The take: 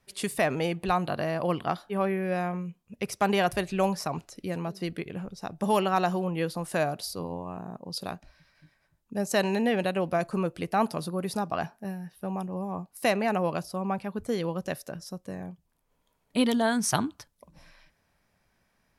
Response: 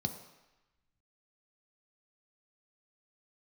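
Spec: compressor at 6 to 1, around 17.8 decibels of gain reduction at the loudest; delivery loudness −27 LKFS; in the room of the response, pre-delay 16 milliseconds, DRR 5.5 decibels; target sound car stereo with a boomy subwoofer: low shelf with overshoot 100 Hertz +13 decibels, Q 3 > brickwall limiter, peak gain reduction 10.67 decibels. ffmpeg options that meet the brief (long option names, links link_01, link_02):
-filter_complex "[0:a]acompressor=threshold=-40dB:ratio=6,asplit=2[link_01][link_02];[1:a]atrim=start_sample=2205,adelay=16[link_03];[link_02][link_03]afir=irnorm=-1:irlink=0,volume=-7.5dB[link_04];[link_01][link_04]amix=inputs=2:normalize=0,lowshelf=frequency=100:width_type=q:width=3:gain=13,volume=17.5dB,alimiter=limit=-17.5dB:level=0:latency=1"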